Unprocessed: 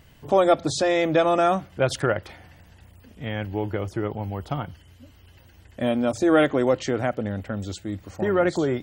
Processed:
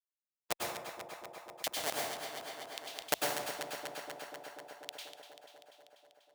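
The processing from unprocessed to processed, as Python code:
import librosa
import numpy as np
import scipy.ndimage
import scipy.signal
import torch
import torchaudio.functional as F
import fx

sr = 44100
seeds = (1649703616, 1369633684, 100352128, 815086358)

y = fx.speed_glide(x, sr, from_pct=96, to_pct=182)
y = fx.doppler_pass(y, sr, speed_mps=10, closest_m=5.3, pass_at_s=2.67)
y = fx.low_shelf(y, sr, hz=370.0, db=-11.5)
y = fx.small_body(y, sr, hz=(280.0, 440.0, 670.0), ring_ms=45, db=13)
y = fx.schmitt(y, sr, flips_db=-17.5)
y = fx.over_compress(y, sr, threshold_db=-36.0, ratio=-0.5)
y = fx.filter_lfo_highpass(y, sr, shape='square', hz=1.5, low_hz=630.0, high_hz=3300.0, q=3.4)
y = fx.echo_alternate(y, sr, ms=122, hz=820.0, feedback_pct=82, wet_db=-10.0)
y = fx.rev_plate(y, sr, seeds[0], rt60_s=0.57, hf_ratio=0.75, predelay_ms=90, drr_db=-1.5)
y = fx.spectral_comp(y, sr, ratio=2.0)
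y = y * librosa.db_to_amplitude(7.5)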